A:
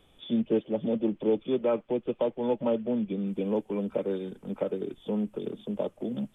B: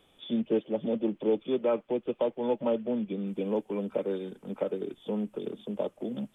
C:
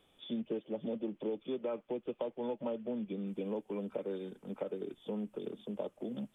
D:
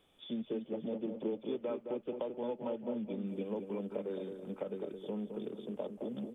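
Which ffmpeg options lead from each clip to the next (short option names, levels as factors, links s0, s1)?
-af "lowshelf=f=110:g=-12"
-af "acompressor=threshold=0.0398:ratio=6,volume=0.562"
-filter_complex "[0:a]asplit=2[s0][s1];[s1]adelay=215,lowpass=f=1600:p=1,volume=0.501,asplit=2[s2][s3];[s3]adelay=215,lowpass=f=1600:p=1,volume=0.35,asplit=2[s4][s5];[s5]adelay=215,lowpass=f=1600:p=1,volume=0.35,asplit=2[s6][s7];[s7]adelay=215,lowpass=f=1600:p=1,volume=0.35[s8];[s0][s2][s4][s6][s8]amix=inputs=5:normalize=0,volume=0.891"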